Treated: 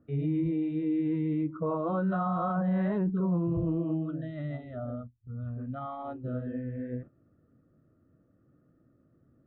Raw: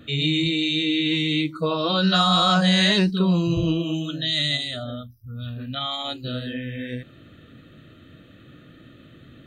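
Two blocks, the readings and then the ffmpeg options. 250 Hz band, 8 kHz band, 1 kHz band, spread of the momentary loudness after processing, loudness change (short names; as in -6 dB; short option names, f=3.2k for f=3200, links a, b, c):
-6.0 dB, under -40 dB, -9.5 dB, 10 LU, -10.0 dB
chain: -af "agate=range=-13dB:threshold=-38dB:ratio=16:detection=peak,lowpass=f=1.2k:w=0.5412,lowpass=f=1.2k:w=1.3066,alimiter=limit=-18.5dB:level=0:latency=1:release=24,volume=-4dB"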